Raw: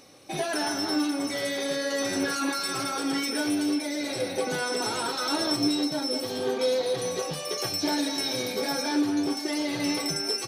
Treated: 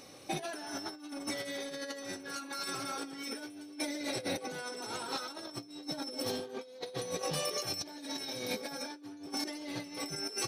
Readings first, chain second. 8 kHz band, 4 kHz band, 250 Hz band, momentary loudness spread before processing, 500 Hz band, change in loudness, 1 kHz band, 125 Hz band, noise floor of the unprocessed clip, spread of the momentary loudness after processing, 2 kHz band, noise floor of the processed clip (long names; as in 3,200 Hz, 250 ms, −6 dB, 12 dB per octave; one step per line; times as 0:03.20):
−8.0 dB, −9.5 dB, −14.0 dB, 4 LU, −11.0 dB, −11.0 dB, −9.5 dB, −7.0 dB, −34 dBFS, 7 LU, −10.0 dB, −51 dBFS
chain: compressor whose output falls as the input rises −33 dBFS, ratio −0.5
level −5.5 dB